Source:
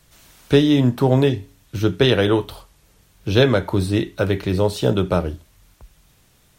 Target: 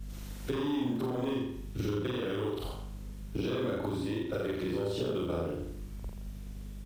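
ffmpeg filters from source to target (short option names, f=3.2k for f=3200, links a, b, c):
-filter_complex "[0:a]afftfilt=real='re':imag='-im':win_size=4096:overlap=0.75,asetrate=42336,aresample=44100,acrossover=split=290|420|2500[a][b][c][d];[b]aeval=exprs='0.126*sin(PI/2*2.51*val(0)/0.126)':c=same[e];[a][e][c][d]amix=inputs=4:normalize=0,aeval=exprs='val(0)+0.00447*(sin(2*PI*50*n/s)+sin(2*PI*2*50*n/s)/2+sin(2*PI*3*50*n/s)/3+sin(2*PI*4*50*n/s)/4+sin(2*PI*5*50*n/s)/5)':c=same,alimiter=limit=-12.5dB:level=0:latency=1:release=215,acrossover=split=240|1200|5100[f][g][h][i];[f]acompressor=threshold=-37dB:ratio=4[j];[g]acompressor=threshold=-27dB:ratio=4[k];[h]acompressor=threshold=-36dB:ratio=4[l];[i]acompressor=threshold=-52dB:ratio=4[m];[j][k][l][m]amix=inputs=4:normalize=0,acrusher=bits=8:mode=log:mix=0:aa=0.000001,acompressor=threshold=-34dB:ratio=6,lowshelf=f=140:g=7,asplit=2[n][o];[o]adelay=85,lowpass=f=4.8k:p=1,volume=-6dB,asplit=2[p][q];[q]adelay=85,lowpass=f=4.8k:p=1,volume=0.45,asplit=2[r][s];[s]adelay=85,lowpass=f=4.8k:p=1,volume=0.45,asplit=2[t][u];[u]adelay=85,lowpass=f=4.8k:p=1,volume=0.45,asplit=2[v][w];[w]adelay=85,lowpass=f=4.8k:p=1,volume=0.45[x];[n][p][r][t][v][x]amix=inputs=6:normalize=0,volume=1.5dB"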